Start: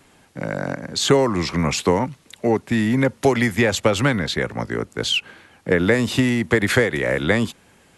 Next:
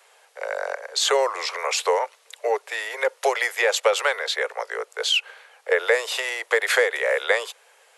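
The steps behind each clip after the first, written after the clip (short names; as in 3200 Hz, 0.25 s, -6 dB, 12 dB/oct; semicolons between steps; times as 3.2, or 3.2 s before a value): steep high-pass 440 Hz 72 dB/oct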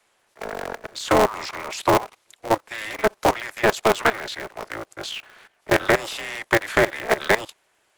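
dynamic EQ 850 Hz, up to +6 dB, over -34 dBFS, Q 0.83; level quantiser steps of 17 dB; polarity switched at an audio rate 110 Hz; gain +2 dB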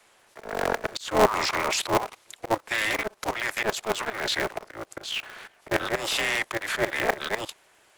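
auto swell 0.256 s; gain +6 dB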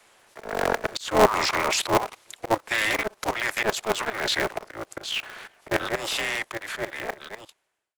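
ending faded out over 2.63 s; gain +2 dB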